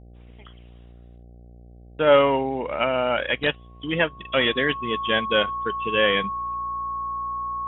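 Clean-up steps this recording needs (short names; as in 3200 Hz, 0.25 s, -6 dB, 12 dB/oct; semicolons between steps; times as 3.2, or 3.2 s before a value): de-hum 59.5 Hz, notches 13; notch 1100 Hz, Q 30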